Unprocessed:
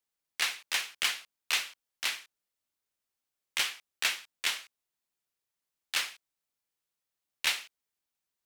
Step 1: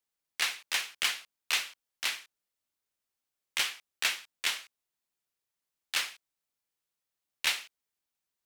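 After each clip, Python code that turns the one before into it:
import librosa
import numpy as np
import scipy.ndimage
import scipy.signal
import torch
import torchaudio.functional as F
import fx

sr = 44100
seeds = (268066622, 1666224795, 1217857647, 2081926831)

y = x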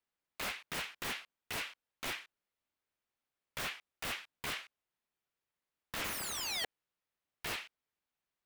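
y = fx.spec_paint(x, sr, seeds[0], shape='fall', start_s=6.04, length_s=0.61, low_hz=600.0, high_hz=2400.0, level_db=-21.0)
y = (np.mod(10.0 ** (28.0 / 20.0) * y + 1.0, 2.0) - 1.0) / 10.0 ** (28.0 / 20.0)
y = fx.bass_treble(y, sr, bass_db=0, treble_db=-12)
y = y * librosa.db_to_amplitude(1.5)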